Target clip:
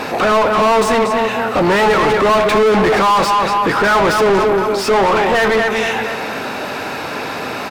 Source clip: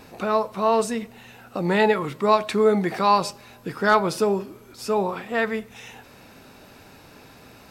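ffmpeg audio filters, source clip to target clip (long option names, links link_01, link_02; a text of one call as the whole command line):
ffmpeg -i in.wav -filter_complex "[0:a]asplit=2[link_01][link_02];[link_02]adelay=233,lowpass=frequency=4000:poles=1,volume=-11dB,asplit=2[link_03][link_04];[link_04]adelay=233,lowpass=frequency=4000:poles=1,volume=0.4,asplit=2[link_05][link_06];[link_06]adelay=233,lowpass=frequency=4000:poles=1,volume=0.4,asplit=2[link_07][link_08];[link_08]adelay=233,lowpass=frequency=4000:poles=1,volume=0.4[link_09];[link_01][link_03][link_05][link_07][link_09]amix=inputs=5:normalize=0,asplit=2[link_10][link_11];[link_11]highpass=frequency=720:poles=1,volume=37dB,asoftclip=type=tanh:threshold=-5dB[link_12];[link_10][link_12]amix=inputs=2:normalize=0,lowpass=frequency=1800:poles=1,volume=-6dB" out.wav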